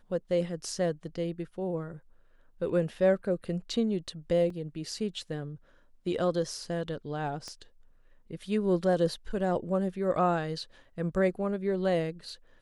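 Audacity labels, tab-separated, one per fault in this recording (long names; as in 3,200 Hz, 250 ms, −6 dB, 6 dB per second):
4.500000	4.500000	drop-out 3.4 ms
7.480000	7.480000	click −27 dBFS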